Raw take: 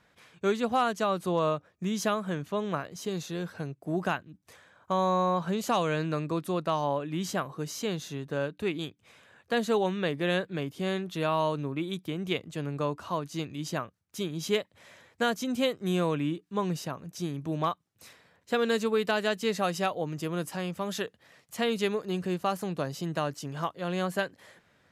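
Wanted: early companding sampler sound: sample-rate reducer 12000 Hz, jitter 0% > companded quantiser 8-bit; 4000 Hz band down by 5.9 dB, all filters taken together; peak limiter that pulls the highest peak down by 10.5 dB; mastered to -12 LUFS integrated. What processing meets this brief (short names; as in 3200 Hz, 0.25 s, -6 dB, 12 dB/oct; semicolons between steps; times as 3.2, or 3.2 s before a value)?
bell 4000 Hz -8 dB; limiter -26 dBFS; sample-rate reducer 12000 Hz, jitter 0%; companded quantiser 8-bit; gain +24 dB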